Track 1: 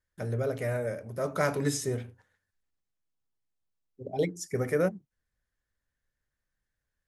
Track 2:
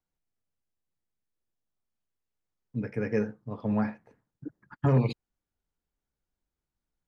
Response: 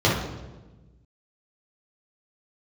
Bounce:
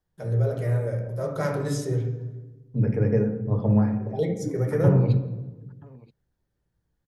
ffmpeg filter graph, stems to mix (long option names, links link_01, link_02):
-filter_complex "[0:a]volume=-5dB,asplit=2[link_01][link_02];[link_02]volume=-17.5dB[link_03];[1:a]acompressor=threshold=-29dB:ratio=6,tiltshelf=frequency=1200:gain=4.5,volume=2dB,asplit=3[link_04][link_05][link_06];[link_05]volume=-22dB[link_07];[link_06]volume=-20.5dB[link_08];[2:a]atrim=start_sample=2205[link_09];[link_03][link_07]amix=inputs=2:normalize=0[link_10];[link_10][link_09]afir=irnorm=-1:irlink=0[link_11];[link_08]aecho=0:1:979:1[link_12];[link_01][link_04][link_11][link_12]amix=inputs=4:normalize=0"